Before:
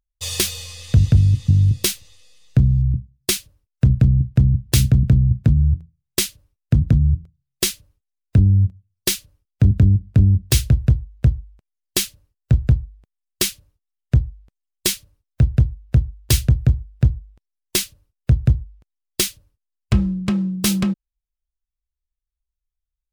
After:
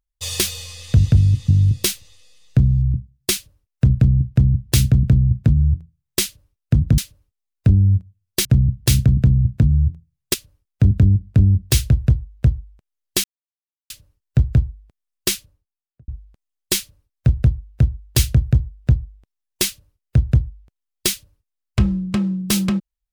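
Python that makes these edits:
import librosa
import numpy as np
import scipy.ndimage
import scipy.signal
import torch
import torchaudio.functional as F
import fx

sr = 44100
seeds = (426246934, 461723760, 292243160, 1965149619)

y = fx.studio_fade_out(x, sr, start_s=13.42, length_s=0.8)
y = fx.edit(y, sr, fx.duplicate(start_s=4.31, length_s=1.89, to_s=9.14),
    fx.cut(start_s=6.98, length_s=0.69),
    fx.insert_silence(at_s=12.04, length_s=0.66), tone=tone)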